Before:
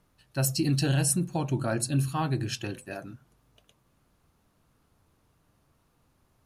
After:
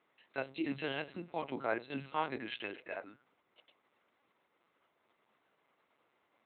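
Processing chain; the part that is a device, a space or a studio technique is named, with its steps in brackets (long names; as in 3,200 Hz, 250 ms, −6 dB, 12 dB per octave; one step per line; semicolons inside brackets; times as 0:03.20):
talking toy (linear-prediction vocoder at 8 kHz pitch kept; high-pass filter 420 Hz 12 dB per octave; parametric band 2,100 Hz +8.5 dB 0.22 octaves)
level −2 dB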